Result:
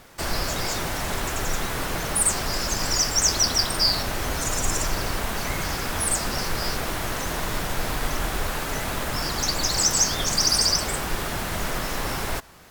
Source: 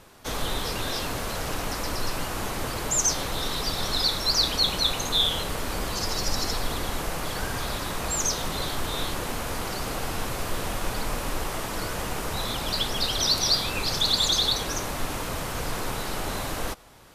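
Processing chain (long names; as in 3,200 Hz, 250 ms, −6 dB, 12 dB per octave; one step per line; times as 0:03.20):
wrong playback speed 33 rpm record played at 45 rpm
level +2.5 dB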